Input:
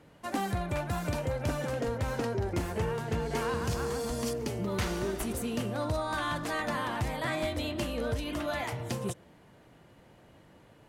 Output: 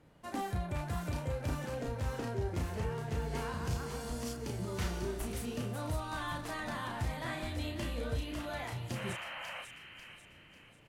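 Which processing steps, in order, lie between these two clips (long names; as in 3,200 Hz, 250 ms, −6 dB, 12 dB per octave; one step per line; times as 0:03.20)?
sound drawn into the spectrogram noise, 0:08.95–0:09.62, 500–3,200 Hz −37 dBFS
low-shelf EQ 100 Hz +7.5 dB
double-tracking delay 33 ms −4 dB
delay with a high-pass on its return 544 ms, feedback 42%, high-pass 1,800 Hz, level −6 dB
level −8 dB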